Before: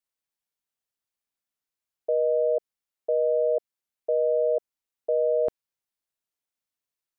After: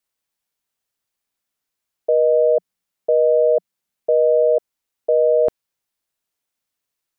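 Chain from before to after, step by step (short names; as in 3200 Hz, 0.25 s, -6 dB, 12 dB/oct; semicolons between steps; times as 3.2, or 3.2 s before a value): 2.33–4.43 bell 180 Hz +8.5 dB 0.54 oct; gain +8 dB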